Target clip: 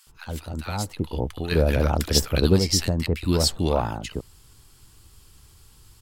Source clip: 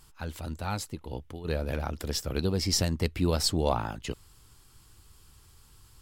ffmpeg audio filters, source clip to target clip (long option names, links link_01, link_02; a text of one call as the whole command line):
ffmpeg -i in.wav -filter_complex "[0:a]acrossover=split=1200[link_01][link_02];[link_01]adelay=70[link_03];[link_03][link_02]amix=inputs=2:normalize=0,asplit=3[link_04][link_05][link_06];[link_04]afade=type=out:start_time=0.9:duration=0.02[link_07];[link_05]acontrast=65,afade=type=in:start_time=0.9:duration=0.02,afade=type=out:start_time=2.58:duration=0.02[link_08];[link_06]afade=type=in:start_time=2.58:duration=0.02[link_09];[link_07][link_08][link_09]amix=inputs=3:normalize=0,volume=4.5dB" out.wav